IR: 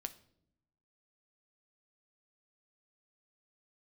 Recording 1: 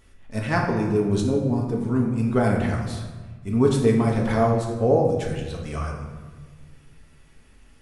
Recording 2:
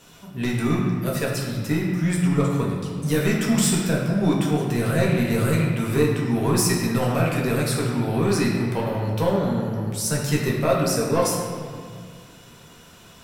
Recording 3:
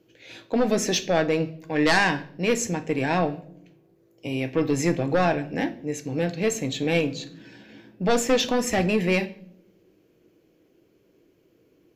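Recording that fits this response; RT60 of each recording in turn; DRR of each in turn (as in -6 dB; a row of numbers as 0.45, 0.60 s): 3; 1.4, 2.1, 0.70 s; -1.5, -4.0, 9.0 dB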